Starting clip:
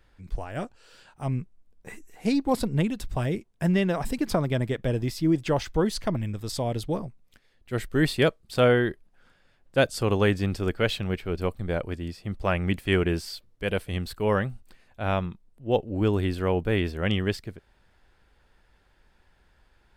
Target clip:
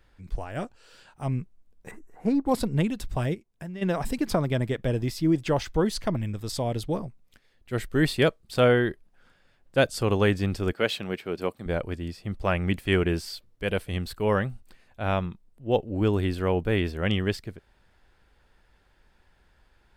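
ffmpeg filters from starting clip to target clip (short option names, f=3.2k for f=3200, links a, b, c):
-filter_complex "[0:a]asettb=1/sr,asplit=3[a][b][c];[a]atrim=end=1.914[d];[b]atrim=start=1.91:end=2.46,asetpts=PTS-STARTPTS,afade=t=in:d=0.004:c=qsin,afade=t=out:st=0.546:d=0.004:c=qsin,highshelf=f=1.9k:t=q:w=1.5:g=-13.5[e];[c]atrim=start=2.456[f];[d][e]acrossfade=d=0.004:c1=hsin:c2=qsin[g];[g][f]acrossfade=d=0.004:c1=qsin:c2=hsin,asplit=3[h][i][j];[h]afade=t=out:st=3.33:d=0.02[k];[i]acompressor=threshold=-43dB:ratio=2.5,afade=t=in:st=3.33:d=0.02,afade=t=out:st=3.81:d=0.02[l];[j]afade=t=in:st=3.81:d=0.02[m];[k][l][m]amix=inputs=3:normalize=0,asettb=1/sr,asplit=3[n][o][p];[n]atrim=end=10.734[q];[o]atrim=start=10.73:end=11.66,asetpts=PTS-STARTPTS,afade=t=in:d=0.004:c=qsin,afade=t=out:st=0.926:d=0.004:c=qsin,highpass=200[r];[p]atrim=start=11.656[s];[q][r]acrossfade=d=0.004:c1=hsin:c2=qsin[t];[t][s]acrossfade=d=0.004:c1=qsin:c2=hsin"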